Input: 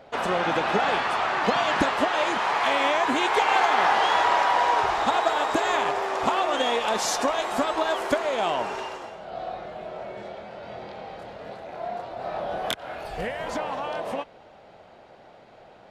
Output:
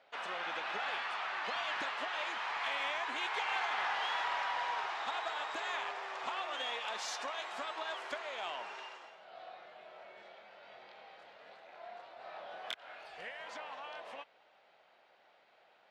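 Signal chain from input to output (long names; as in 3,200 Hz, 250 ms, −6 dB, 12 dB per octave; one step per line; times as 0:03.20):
low-pass filter 2,600 Hz 12 dB per octave
first difference
in parallel at −8 dB: soft clipping −37 dBFS, distortion −12 dB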